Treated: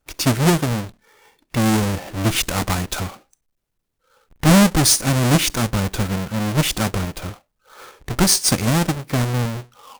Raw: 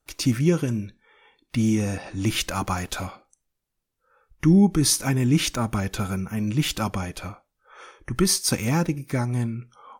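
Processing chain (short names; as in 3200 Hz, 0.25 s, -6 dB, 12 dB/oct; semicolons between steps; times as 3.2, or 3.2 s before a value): half-waves squared off; dynamic EQ 8600 Hz, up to +5 dB, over -35 dBFS, Q 0.71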